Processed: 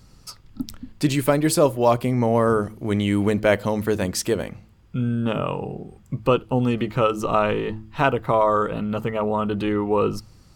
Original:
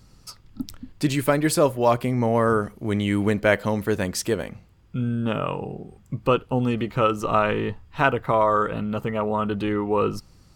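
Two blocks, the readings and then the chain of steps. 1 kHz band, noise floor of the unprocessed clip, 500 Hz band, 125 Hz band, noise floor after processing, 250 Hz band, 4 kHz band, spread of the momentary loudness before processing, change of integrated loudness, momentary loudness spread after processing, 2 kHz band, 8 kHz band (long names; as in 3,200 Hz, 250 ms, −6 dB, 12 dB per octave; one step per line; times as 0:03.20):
+0.5 dB, −54 dBFS, +1.5 dB, +1.5 dB, −51 dBFS, +1.5 dB, +1.5 dB, 15 LU, +1.0 dB, 15 LU, −1.5 dB, +2.0 dB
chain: hum removal 109.2 Hz, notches 3
dynamic equaliser 1,700 Hz, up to −5 dB, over −35 dBFS, Q 1.4
level +2 dB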